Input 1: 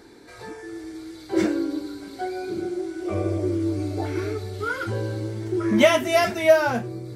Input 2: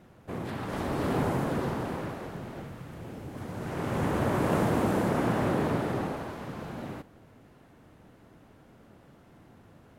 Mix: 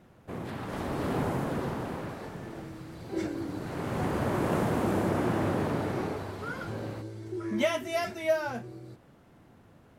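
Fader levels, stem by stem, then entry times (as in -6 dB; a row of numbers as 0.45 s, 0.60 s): -11.0 dB, -2.0 dB; 1.80 s, 0.00 s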